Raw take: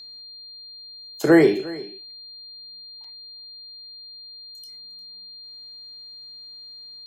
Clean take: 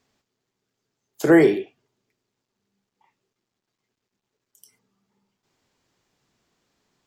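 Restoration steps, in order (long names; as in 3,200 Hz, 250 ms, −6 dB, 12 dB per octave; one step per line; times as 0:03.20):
notch filter 4,200 Hz, Q 30
repair the gap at 0:03.04, 3.7 ms
echo removal 354 ms −19 dB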